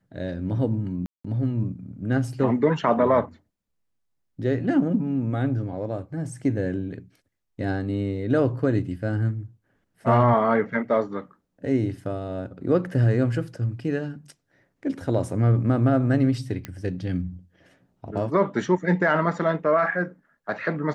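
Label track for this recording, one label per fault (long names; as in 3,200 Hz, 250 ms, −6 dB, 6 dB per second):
1.060000	1.250000	drop-out 185 ms
16.650000	16.650000	click −17 dBFS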